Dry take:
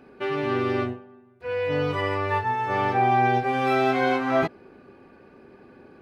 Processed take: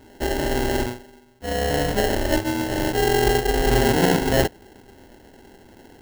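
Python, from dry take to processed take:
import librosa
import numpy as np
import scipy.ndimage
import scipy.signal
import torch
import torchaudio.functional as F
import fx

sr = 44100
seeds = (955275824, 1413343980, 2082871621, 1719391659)

y = fx.median_filter(x, sr, points=25, at=(2.38, 3.27))
y = fx.peak_eq(y, sr, hz=2500.0, db=12.5, octaves=1.7)
y = fx.sample_hold(y, sr, seeds[0], rate_hz=1200.0, jitter_pct=0)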